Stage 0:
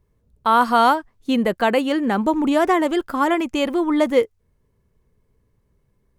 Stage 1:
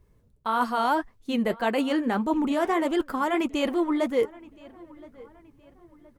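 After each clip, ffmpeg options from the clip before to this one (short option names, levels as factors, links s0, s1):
-filter_complex "[0:a]areverse,acompressor=threshold=0.0447:ratio=4,areverse,asplit=2[s0][s1];[s1]adelay=1021,lowpass=f=3000:p=1,volume=0.0794,asplit=2[s2][s3];[s3]adelay=1021,lowpass=f=3000:p=1,volume=0.43,asplit=2[s4][s5];[s5]adelay=1021,lowpass=f=3000:p=1,volume=0.43[s6];[s0][s2][s4][s6]amix=inputs=4:normalize=0,flanger=delay=2.5:depth=6.6:regen=-57:speed=1.7:shape=triangular,volume=2.37"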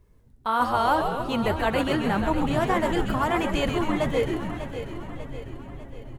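-filter_complex "[0:a]asplit=2[s0][s1];[s1]aecho=0:1:596|1192|1788|2384|2980:0.282|0.144|0.0733|0.0374|0.0191[s2];[s0][s2]amix=inputs=2:normalize=0,asubboost=boost=12:cutoff=92,asplit=2[s3][s4];[s4]asplit=8[s5][s6][s7][s8][s9][s10][s11][s12];[s5]adelay=133,afreqshift=-140,volume=0.501[s13];[s6]adelay=266,afreqshift=-280,volume=0.295[s14];[s7]adelay=399,afreqshift=-420,volume=0.174[s15];[s8]adelay=532,afreqshift=-560,volume=0.104[s16];[s9]adelay=665,afreqshift=-700,volume=0.061[s17];[s10]adelay=798,afreqshift=-840,volume=0.0359[s18];[s11]adelay=931,afreqshift=-980,volume=0.0211[s19];[s12]adelay=1064,afreqshift=-1120,volume=0.0124[s20];[s13][s14][s15][s16][s17][s18][s19][s20]amix=inputs=8:normalize=0[s21];[s3][s21]amix=inputs=2:normalize=0,volume=1.19"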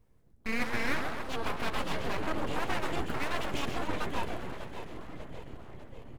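-af "aeval=exprs='abs(val(0))':c=same,volume=0.501"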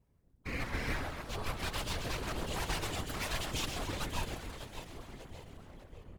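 -filter_complex "[0:a]acrossover=split=3600[s0][s1];[s1]dynaudnorm=f=600:g=5:m=4.47[s2];[s0][s2]amix=inputs=2:normalize=0,afftfilt=real='hypot(re,im)*cos(2*PI*random(0))':imag='hypot(re,im)*sin(2*PI*random(1))':win_size=512:overlap=0.75"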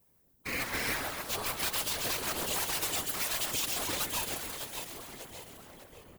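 -af "aemphasis=mode=production:type=bsi,alimiter=level_in=1.26:limit=0.0631:level=0:latency=1:release=139,volume=0.794,volume=1.68"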